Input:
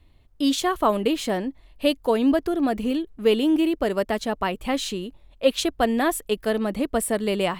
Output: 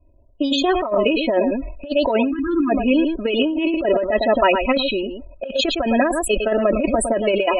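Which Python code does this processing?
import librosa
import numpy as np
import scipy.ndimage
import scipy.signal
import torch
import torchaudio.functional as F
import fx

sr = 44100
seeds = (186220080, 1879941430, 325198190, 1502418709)

p1 = fx.law_mismatch(x, sr, coded='A')
p2 = fx.env_lowpass(p1, sr, base_hz=1400.0, full_db=-16.5)
p3 = p2 + 0.88 * np.pad(p2, (int(3.1 * sr / 1000.0), 0))[:len(p2)]
p4 = fx.small_body(p3, sr, hz=(540.0, 2500.0), ring_ms=35, db=13)
p5 = p4 + fx.echo_single(p4, sr, ms=108, db=-12.0, dry=0)
p6 = fx.spec_topn(p5, sr, count=32)
p7 = fx.over_compress(p6, sr, threshold_db=-18.0, ratio=-0.5)
p8 = fx.dynamic_eq(p7, sr, hz=2100.0, q=0.78, threshold_db=-35.0, ratio=4.0, max_db=5)
p9 = fx.spec_erase(p8, sr, start_s=2.32, length_s=0.38, low_hz=360.0, high_hz=980.0)
y = fx.sustainer(p9, sr, db_per_s=59.0)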